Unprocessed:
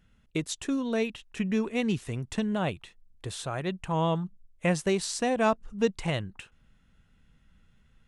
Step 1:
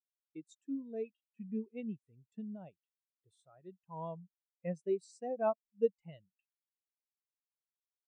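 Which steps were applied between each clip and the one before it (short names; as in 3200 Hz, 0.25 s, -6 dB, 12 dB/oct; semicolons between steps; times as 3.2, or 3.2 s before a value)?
HPF 210 Hz 6 dB/oct; high shelf 4200 Hz +9 dB; spectral expander 2.5:1; gain -6.5 dB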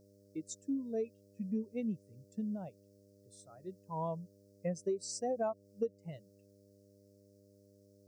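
compressor 12:1, threshold -37 dBFS, peak gain reduction 14 dB; buzz 100 Hz, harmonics 6, -70 dBFS -1 dB/oct; resonant high shelf 4000 Hz +9 dB, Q 3; gain +6 dB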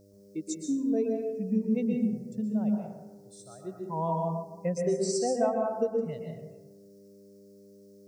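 plate-style reverb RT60 1.1 s, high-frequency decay 0.4×, pre-delay 0.11 s, DRR 0.5 dB; gain +6 dB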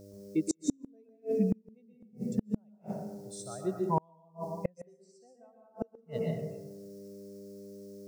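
flipped gate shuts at -23 dBFS, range -38 dB; gain +6.5 dB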